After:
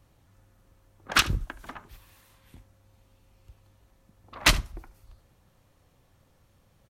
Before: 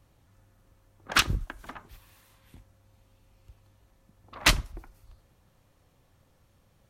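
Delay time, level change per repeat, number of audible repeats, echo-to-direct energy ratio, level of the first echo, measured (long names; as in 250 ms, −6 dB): 73 ms, repeats not evenly spaced, 1, −20.0 dB, −20.0 dB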